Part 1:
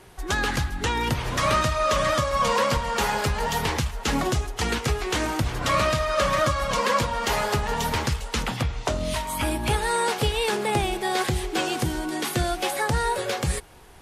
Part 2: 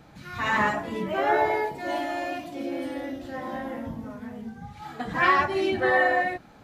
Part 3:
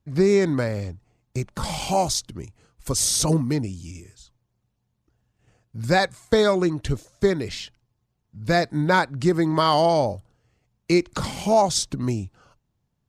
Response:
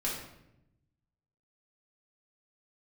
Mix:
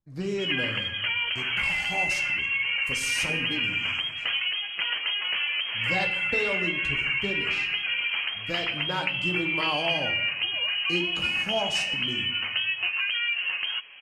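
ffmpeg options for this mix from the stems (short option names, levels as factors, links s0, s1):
-filter_complex "[0:a]highpass=43,acrossover=split=2600[s0][s1];[s1]acompressor=threshold=0.00794:ratio=4:attack=1:release=60[s2];[s0][s2]amix=inputs=2:normalize=0,equalizer=f=640:t=o:w=2.7:g=10.5,adelay=200,volume=1[s3];[1:a]adelay=950,volume=0.355[s4];[2:a]volume=0.266,asplit=2[s5][s6];[s6]volume=0.447[s7];[s3][s4]amix=inputs=2:normalize=0,lowpass=f=2800:t=q:w=0.5098,lowpass=f=2800:t=q:w=0.6013,lowpass=f=2800:t=q:w=0.9,lowpass=f=2800:t=q:w=2.563,afreqshift=-3300,acompressor=threshold=0.0891:ratio=6,volume=1[s8];[3:a]atrim=start_sample=2205[s9];[s7][s9]afir=irnorm=-1:irlink=0[s10];[s5][s8][s10]amix=inputs=3:normalize=0,flanger=delay=5.8:depth=8.6:regen=-43:speed=0.21:shape=triangular"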